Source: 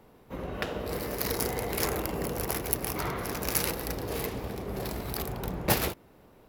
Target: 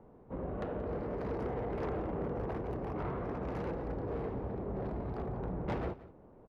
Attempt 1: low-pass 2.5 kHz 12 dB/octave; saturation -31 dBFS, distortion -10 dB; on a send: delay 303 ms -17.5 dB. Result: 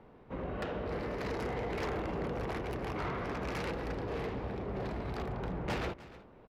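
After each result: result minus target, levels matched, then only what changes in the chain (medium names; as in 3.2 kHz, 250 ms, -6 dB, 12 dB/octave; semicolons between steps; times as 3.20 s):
echo 124 ms late; 2 kHz band +8.0 dB
change: delay 179 ms -17.5 dB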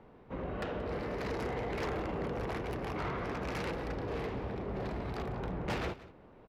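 2 kHz band +8.0 dB
change: low-pass 920 Hz 12 dB/octave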